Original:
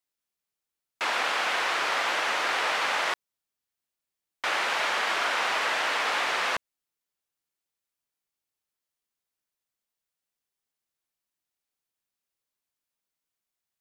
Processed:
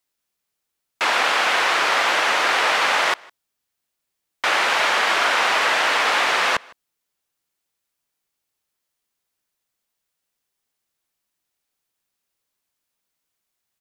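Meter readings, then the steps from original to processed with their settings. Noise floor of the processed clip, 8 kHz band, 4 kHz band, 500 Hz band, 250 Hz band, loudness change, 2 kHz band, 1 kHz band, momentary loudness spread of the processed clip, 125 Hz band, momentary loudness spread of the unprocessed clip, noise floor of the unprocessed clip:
-80 dBFS, +8.0 dB, +8.0 dB, +8.0 dB, +8.0 dB, +8.0 dB, +8.0 dB, +8.0 dB, 4 LU, n/a, 4 LU, under -85 dBFS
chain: outdoor echo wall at 27 m, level -25 dB; gain +8 dB

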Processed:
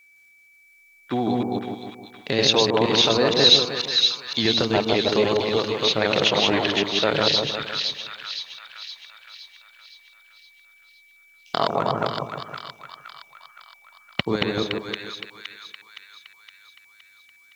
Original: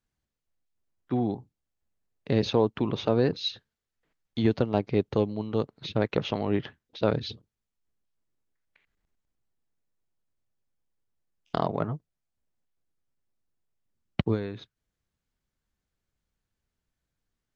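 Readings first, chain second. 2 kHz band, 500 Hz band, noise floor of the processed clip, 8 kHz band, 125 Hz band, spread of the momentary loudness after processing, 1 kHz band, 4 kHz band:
+15.5 dB, +6.5 dB, -55 dBFS, n/a, -0.5 dB, 19 LU, +10.0 dB, +19.5 dB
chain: reverse delay 0.159 s, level -1 dB; vibrato 8.5 Hz 28 cents; in parallel at +3 dB: limiter -17.5 dBFS, peak gain reduction 11 dB; on the sum: tilt +4 dB/oct; on a send: split-band echo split 1200 Hz, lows 0.156 s, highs 0.516 s, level -4.5 dB; on the sum: whine 2300 Hz -54 dBFS; gain +1.5 dB

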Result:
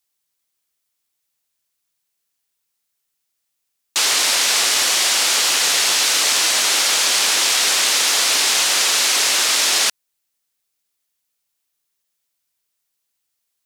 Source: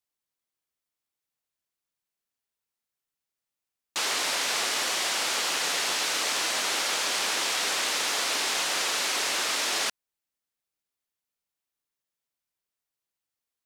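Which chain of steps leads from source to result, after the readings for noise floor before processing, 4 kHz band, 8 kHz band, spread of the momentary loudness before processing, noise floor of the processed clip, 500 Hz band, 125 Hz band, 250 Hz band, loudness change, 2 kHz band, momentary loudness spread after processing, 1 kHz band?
under -85 dBFS, +11.5 dB, +13.0 dB, 1 LU, -75 dBFS, +5.5 dB, n/a, +5.0 dB, +11.5 dB, +8.5 dB, 1 LU, +6.5 dB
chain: high shelf 2500 Hz +9 dB; gain +5 dB

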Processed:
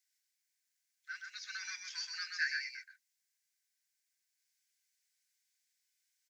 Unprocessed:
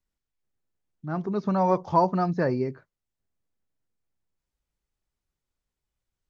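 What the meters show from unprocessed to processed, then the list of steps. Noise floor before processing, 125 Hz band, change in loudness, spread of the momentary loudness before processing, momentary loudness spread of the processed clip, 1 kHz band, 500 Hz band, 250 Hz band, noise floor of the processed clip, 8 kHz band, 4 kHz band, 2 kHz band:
under -85 dBFS, under -40 dB, -14.0 dB, 10 LU, 15 LU, -32.5 dB, under -40 dB, under -40 dB, -85 dBFS, n/a, +10.0 dB, +4.5 dB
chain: rippled Chebyshev high-pass 1500 Hz, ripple 6 dB; high shelf 4200 Hz +7.5 dB; on a send: echo 0.127 s -4.5 dB; on the sum: gain +6.5 dB

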